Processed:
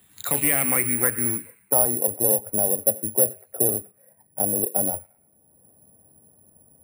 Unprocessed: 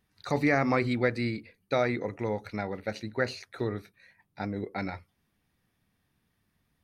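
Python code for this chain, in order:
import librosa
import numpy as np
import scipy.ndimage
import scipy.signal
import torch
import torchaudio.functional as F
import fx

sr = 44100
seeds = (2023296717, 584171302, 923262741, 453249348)

p1 = fx.rattle_buzz(x, sr, strikes_db=-41.0, level_db=-33.0)
p2 = scipy.signal.sosfilt(scipy.signal.butter(2, 67.0, 'highpass', fs=sr, output='sos'), p1)
p3 = fx.high_shelf(p2, sr, hz=3800.0, db=-7.5)
p4 = fx.rider(p3, sr, range_db=10, speed_s=0.5)
p5 = p3 + F.gain(torch.from_numpy(p4), -3.0).numpy()
p6 = fx.clip_asym(p5, sr, top_db=-22.5, bottom_db=-13.5)
p7 = fx.filter_sweep_lowpass(p6, sr, from_hz=3600.0, to_hz=610.0, start_s=0.21, end_s=2.16, q=3.3)
p8 = p7 + fx.echo_wet_highpass(p7, sr, ms=109, feedback_pct=35, hz=2500.0, wet_db=-7.5, dry=0)
p9 = (np.kron(p8[::4], np.eye(4)[0]) * 4)[:len(p8)]
p10 = fx.band_squash(p9, sr, depth_pct=40)
y = F.gain(torch.from_numpy(p10), -5.5).numpy()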